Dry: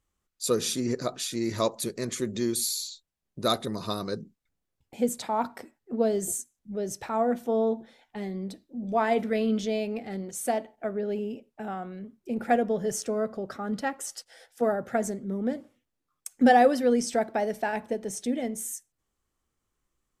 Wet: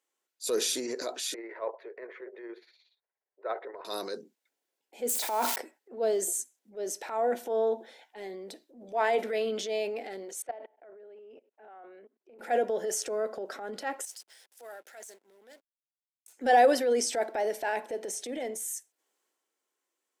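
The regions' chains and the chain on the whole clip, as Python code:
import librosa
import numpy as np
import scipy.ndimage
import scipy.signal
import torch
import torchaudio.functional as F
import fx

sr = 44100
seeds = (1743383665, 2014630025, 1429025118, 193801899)

y = fx.chain(x, sr, fx.ellip_bandpass(low_hz=410.0, high_hz=2000.0, order=3, stop_db=60),
    fx.tremolo(hz=17.0, depth=0.65), at=(1.34, 3.85))
y = fx.chain(y, sr, fx.crossing_spikes(level_db=-30.0),
    fx.sustainer(db_per_s=63.0), at=(5.09, 5.56))
y = fx.chain(y, sr, fx.bandpass_edges(low_hz=280.0, high_hz=2200.0),
    fx.level_steps(step_db=24), at=(10.42, 12.39))
y = fx.chain(y, sr, fx.pre_emphasis(coefficient=0.97),
    fx.over_compress(threshold_db=-44.0, ratio=-1.0),
    fx.backlash(play_db=-53.5), at=(14.05, 16.33))
y = scipy.signal.sosfilt(scipy.signal.butter(4, 350.0, 'highpass', fs=sr, output='sos'), y)
y = fx.notch(y, sr, hz=1200.0, q=6.5)
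y = fx.transient(y, sr, attack_db=-7, sustain_db=5)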